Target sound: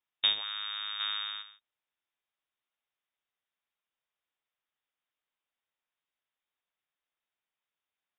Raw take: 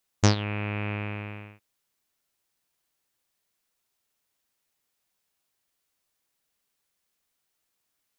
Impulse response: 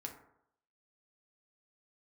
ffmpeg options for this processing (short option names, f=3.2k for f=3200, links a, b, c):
-filter_complex "[0:a]lowpass=f=3.2k:t=q:w=0.5098,lowpass=f=3.2k:t=q:w=0.6013,lowpass=f=3.2k:t=q:w=0.9,lowpass=f=3.2k:t=q:w=2.563,afreqshift=-3800,asplit=3[a][b][c];[a]afade=t=out:st=0.99:d=0.02[d];[b]acontrast=70,afade=t=in:st=0.99:d=0.02,afade=t=out:st=1.41:d=0.02[e];[c]afade=t=in:st=1.41:d=0.02[f];[d][e][f]amix=inputs=3:normalize=0,volume=-7dB"